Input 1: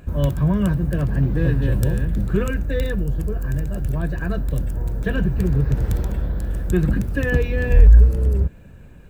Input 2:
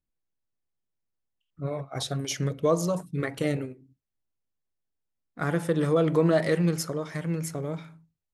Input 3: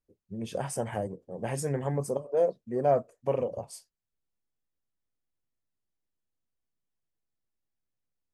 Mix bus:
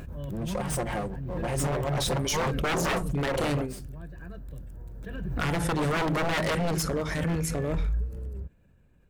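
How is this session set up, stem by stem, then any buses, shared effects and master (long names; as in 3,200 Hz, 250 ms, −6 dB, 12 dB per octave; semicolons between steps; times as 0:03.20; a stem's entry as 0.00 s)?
−19.0 dB, 0.00 s, no send, no processing
+2.5 dB, 0.00 s, no send, mains-hum notches 50/100/150 Hz
+1.0 dB, 0.00 s, no send, lower of the sound and its delayed copy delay 5.6 ms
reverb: not used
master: wave folding −21.5 dBFS; background raised ahead of every attack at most 27 dB per second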